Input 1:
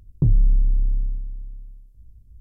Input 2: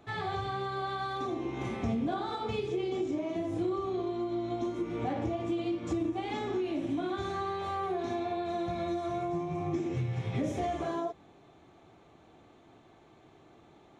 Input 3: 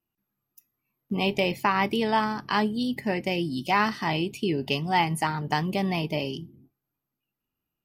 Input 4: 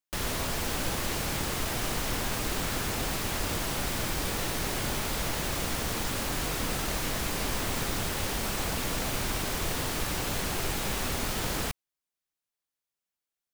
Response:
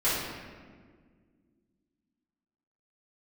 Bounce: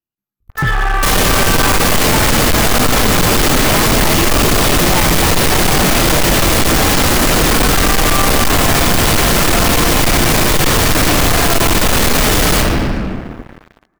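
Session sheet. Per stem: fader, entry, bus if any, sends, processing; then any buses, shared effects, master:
−6.5 dB, 0.40 s, bus A, no send, Butterworth low-pass 500 Hz 96 dB per octave
−1.5 dB, 0.50 s, bus A, send −4.5 dB, high-pass filter 1,500 Hz 6 dB per octave; high shelf with overshoot 2,300 Hz −11.5 dB, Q 3
+1.5 dB, 0.00 s, bus A, no send, no processing
+3.0 dB, 0.90 s, no bus, send −9.5 dB, no processing
bus A: 0.0 dB, downward compressor, threshold −29 dBFS, peak gain reduction 12 dB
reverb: on, RT60 1.7 s, pre-delay 4 ms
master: leveller curve on the samples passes 5

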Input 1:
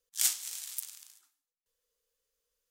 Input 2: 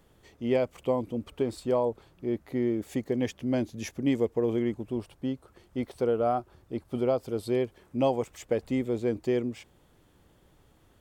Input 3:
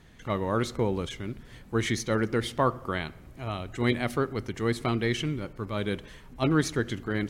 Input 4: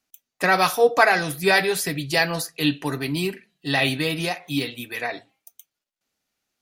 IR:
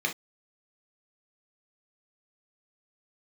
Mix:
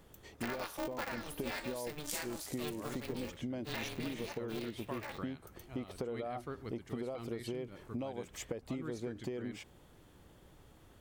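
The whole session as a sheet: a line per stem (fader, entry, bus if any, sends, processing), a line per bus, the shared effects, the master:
−5.0 dB, 1.90 s, no send, no processing
+1.5 dB, 0.00 s, no send, downward compressor, threshold −29 dBFS, peak gain reduction 9 dB
−12.5 dB, 2.30 s, no send, no processing
−11.5 dB, 0.00 s, no send, ring modulator with a square carrier 150 Hz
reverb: not used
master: downward compressor 6 to 1, threshold −37 dBFS, peak gain reduction 14.5 dB

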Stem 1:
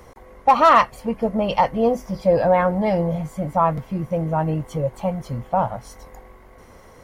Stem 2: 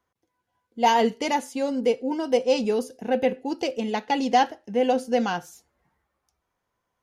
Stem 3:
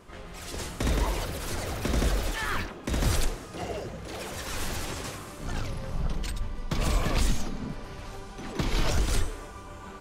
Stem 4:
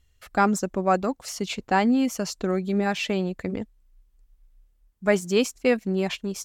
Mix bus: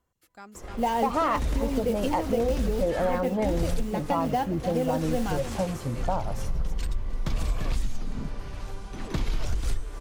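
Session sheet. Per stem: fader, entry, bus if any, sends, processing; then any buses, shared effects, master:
−4.0 dB, 0.55 s, no send, no echo send, parametric band 340 Hz +9 dB 0.77 octaves
−2.5 dB, 0.00 s, no send, echo send −16 dB, spectral tilt −2.5 dB per octave; noise that follows the level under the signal 24 dB
−1.5 dB, 0.55 s, no send, echo send −21.5 dB, low-shelf EQ 84 Hz +11 dB
−10.5 dB, 0.00 s, no send, echo send −4 dB, first-order pre-emphasis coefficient 0.8; automatic ducking −12 dB, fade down 1.80 s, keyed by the second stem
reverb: not used
echo: single-tap delay 302 ms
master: downward compressor 4 to 1, threshold −23 dBFS, peak gain reduction 11 dB

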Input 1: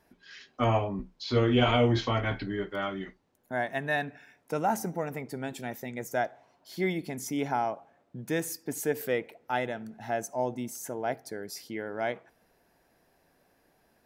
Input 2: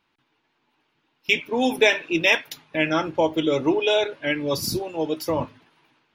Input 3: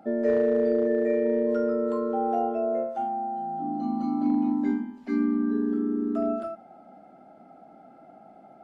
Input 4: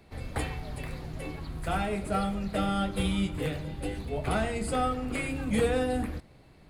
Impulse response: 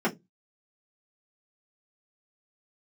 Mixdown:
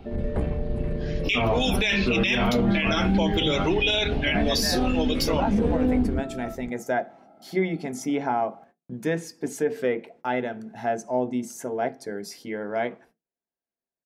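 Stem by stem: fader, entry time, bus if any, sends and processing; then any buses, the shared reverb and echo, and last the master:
+1.5 dB, 0.75 s, send −17 dB, treble cut that deepens with the level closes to 2,800 Hz, closed at −23.5 dBFS; noise gate −57 dBFS, range −35 dB
+0.5 dB, 0.00 s, no send, meter weighting curve D
−2.5 dB, 0.00 s, no send, downward compressor, threshold −30 dBFS, peak gain reduction 10.5 dB
+3.0 dB, 0.00 s, send −15 dB, spectral tilt −4 dB per octave; downward compressor 1.5 to 1, threshold −33 dBFS, peak gain reduction 8.5 dB; tube saturation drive 20 dB, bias 0.55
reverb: on, RT60 0.15 s, pre-delay 3 ms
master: brickwall limiter −14 dBFS, peak gain reduction 19 dB

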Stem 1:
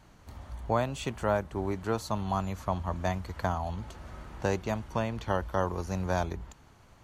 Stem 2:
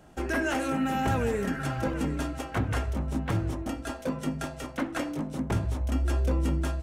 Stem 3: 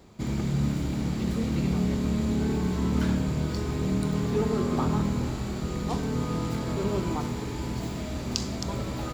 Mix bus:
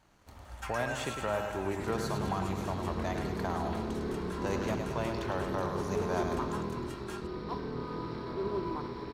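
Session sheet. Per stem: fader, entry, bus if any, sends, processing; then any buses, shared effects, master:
−5.5 dB, 0.00 s, no send, echo send −6.5 dB, bass and treble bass −5 dB, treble 0 dB; brickwall limiter −19.5 dBFS, peak gain reduction 5.5 dB
+2.0 dB, 0.45 s, no send, no echo send, Butterworth high-pass 850 Hz 72 dB per octave; brickwall limiter −31 dBFS, peak gain reduction 10.5 dB; automatic ducking −13 dB, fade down 1.75 s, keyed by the first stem
−7.5 dB, 1.60 s, no send, no echo send, amplitude modulation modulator 280 Hz, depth 50%; Chebyshev low-pass with heavy ripple 5,600 Hz, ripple 6 dB; hollow resonant body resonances 370/1,000 Hz, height 12 dB, ringing for 35 ms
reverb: not used
echo: repeating echo 104 ms, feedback 59%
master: leveller curve on the samples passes 1

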